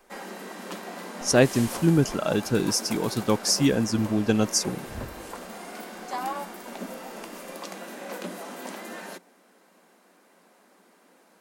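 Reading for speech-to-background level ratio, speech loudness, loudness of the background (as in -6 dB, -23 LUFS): 13.5 dB, -24.0 LUFS, -37.5 LUFS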